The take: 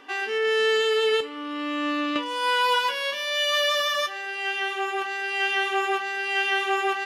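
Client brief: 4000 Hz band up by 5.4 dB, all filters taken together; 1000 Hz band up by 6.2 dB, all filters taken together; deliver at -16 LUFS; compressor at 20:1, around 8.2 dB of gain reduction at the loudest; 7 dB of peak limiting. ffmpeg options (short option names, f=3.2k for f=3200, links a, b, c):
-af "equalizer=f=1k:t=o:g=7,equalizer=f=4k:t=o:g=7,acompressor=threshold=-21dB:ratio=20,volume=9.5dB,alimiter=limit=-9.5dB:level=0:latency=1"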